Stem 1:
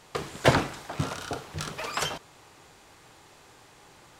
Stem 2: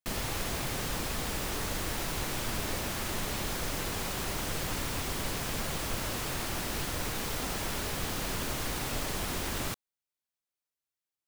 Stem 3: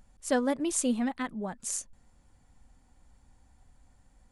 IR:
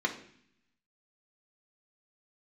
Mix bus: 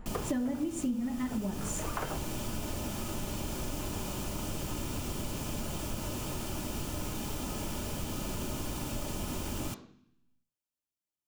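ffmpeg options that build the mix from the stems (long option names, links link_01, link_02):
-filter_complex "[0:a]lowpass=1400,volume=0dB[link_01];[1:a]equalizer=frequency=2000:width=2.3:gain=-11,volume=-1.5dB,asplit=2[link_02][link_03];[link_03]volume=-10dB[link_04];[2:a]lowshelf=frequency=460:gain=10,volume=-2dB,asplit=3[link_05][link_06][link_07];[link_06]volume=-6dB[link_08];[link_07]apad=whole_len=185036[link_09];[link_01][link_09]sidechaincompress=threshold=-34dB:ratio=8:attack=16:release=390[link_10];[3:a]atrim=start_sample=2205[link_11];[link_04][link_08]amix=inputs=2:normalize=0[link_12];[link_12][link_11]afir=irnorm=-1:irlink=0[link_13];[link_10][link_02][link_05][link_13]amix=inputs=4:normalize=0,acompressor=threshold=-30dB:ratio=8"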